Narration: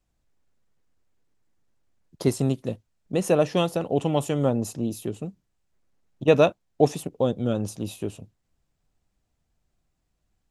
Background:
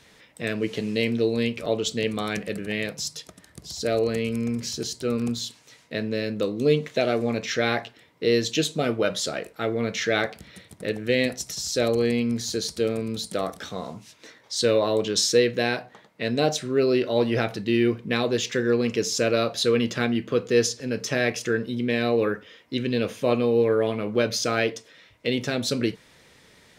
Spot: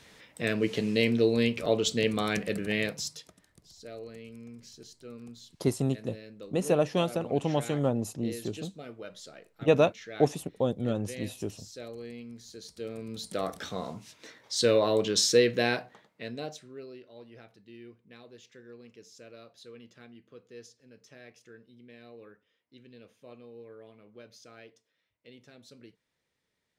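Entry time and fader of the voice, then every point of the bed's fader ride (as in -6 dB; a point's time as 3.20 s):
3.40 s, -4.5 dB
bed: 2.85 s -1 dB
3.77 s -19.5 dB
12.51 s -19.5 dB
13.54 s -2.5 dB
15.76 s -2.5 dB
17.05 s -27.5 dB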